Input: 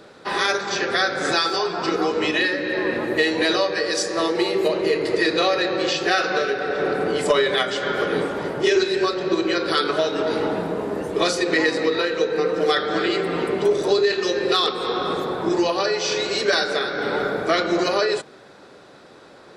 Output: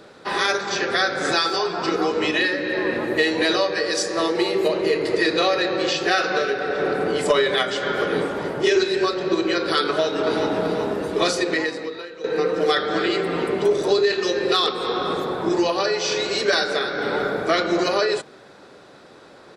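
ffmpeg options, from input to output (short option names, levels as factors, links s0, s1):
-filter_complex "[0:a]asplit=2[s0][s1];[s1]afade=t=in:st=9.85:d=0.01,afade=t=out:st=10.55:d=0.01,aecho=0:1:380|760|1140|1520|1900|2280:0.501187|0.250594|0.125297|0.0626484|0.0313242|0.0156621[s2];[s0][s2]amix=inputs=2:normalize=0,asplit=2[s3][s4];[s3]atrim=end=12.24,asetpts=PTS-STARTPTS,afade=t=out:st=11.4:d=0.84:c=qua:silence=0.177828[s5];[s4]atrim=start=12.24,asetpts=PTS-STARTPTS,afade=t=in:d=0.004:c=hsin:silence=0.177828[s6];[s5][s6]concat=n=2:v=0:a=1"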